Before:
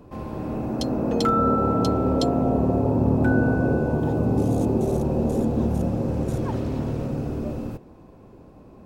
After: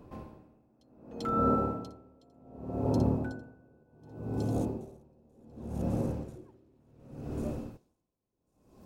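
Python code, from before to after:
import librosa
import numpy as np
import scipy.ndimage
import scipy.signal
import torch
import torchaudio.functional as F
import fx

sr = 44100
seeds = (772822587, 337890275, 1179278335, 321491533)

y = fx.comb_fb(x, sr, f0_hz=53.0, decay_s=0.26, harmonics='all', damping=0.0, mix_pct=70, at=(3.83, 4.55))
y = fx.peak_eq(y, sr, hz=350.0, db=14.5, octaves=0.28, at=(6.35, 6.77))
y = fx.echo_wet_highpass(y, sr, ms=1094, feedback_pct=45, hz=5300.0, wet_db=-6)
y = y * 10.0 ** (-35 * (0.5 - 0.5 * np.cos(2.0 * np.pi * 0.67 * np.arange(len(y)) / sr)) / 20.0)
y = F.gain(torch.from_numpy(y), -5.5).numpy()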